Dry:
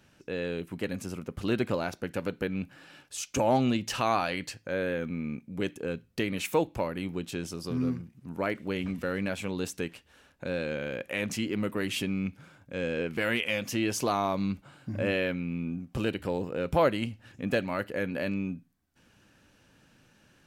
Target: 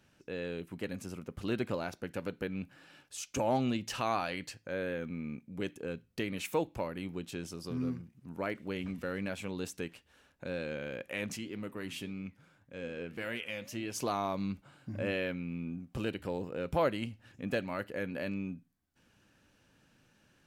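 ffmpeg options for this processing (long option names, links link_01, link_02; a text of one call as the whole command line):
ffmpeg -i in.wav -filter_complex "[0:a]asplit=3[link_01][link_02][link_03];[link_01]afade=type=out:start_time=11.36:duration=0.02[link_04];[link_02]flanger=delay=6.4:depth=5.8:regen=85:speed=1.8:shape=triangular,afade=type=in:start_time=11.36:duration=0.02,afade=type=out:start_time=13.94:duration=0.02[link_05];[link_03]afade=type=in:start_time=13.94:duration=0.02[link_06];[link_04][link_05][link_06]amix=inputs=3:normalize=0,volume=-5.5dB" out.wav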